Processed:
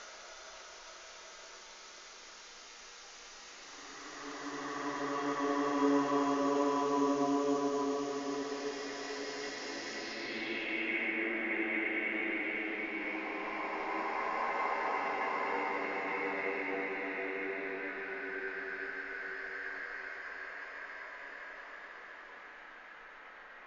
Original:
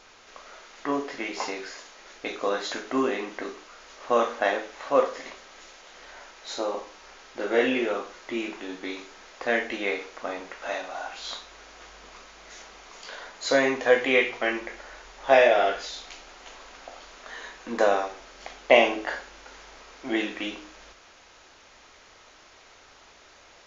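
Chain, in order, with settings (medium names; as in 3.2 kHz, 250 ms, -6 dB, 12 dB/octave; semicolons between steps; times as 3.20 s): Paulstretch 17×, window 0.25 s, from 0.55 s; low-pass sweep 6 kHz -> 1.8 kHz, 9.94–11.29 s; trim -5 dB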